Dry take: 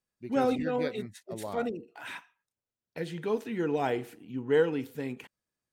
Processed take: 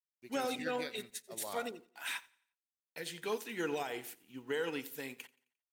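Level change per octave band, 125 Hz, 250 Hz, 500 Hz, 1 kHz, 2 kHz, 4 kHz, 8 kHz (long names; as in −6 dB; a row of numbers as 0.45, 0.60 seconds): −15.0, −11.0, −9.5, −6.5, −1.5, +2.5, +7.5 decibels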